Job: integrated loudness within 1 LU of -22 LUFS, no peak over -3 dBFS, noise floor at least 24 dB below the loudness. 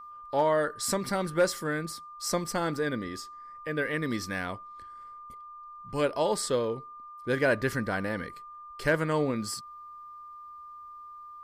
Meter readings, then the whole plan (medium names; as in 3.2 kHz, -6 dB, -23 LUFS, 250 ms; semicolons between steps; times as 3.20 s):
steady tone 1.2 kHz; tone level -43 dBFS; loudness -30.0 LUFS; peak level -14.5 dBFS; loudness target -22.0 LUFS
-> band-stop 1.2 kHz, Q 30; trim +8 dB